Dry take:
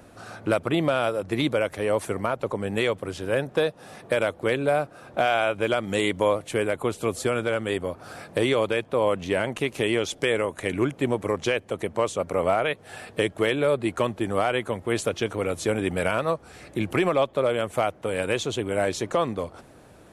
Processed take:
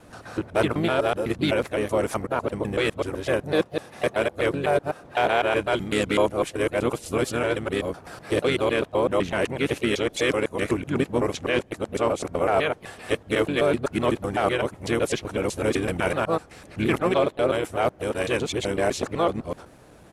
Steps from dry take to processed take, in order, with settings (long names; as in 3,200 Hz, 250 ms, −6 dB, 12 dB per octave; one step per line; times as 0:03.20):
reversed piece by piece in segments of 126 ms
pitch-shifted copies added −7 semitones −8 dB, +3 semitones −12 dB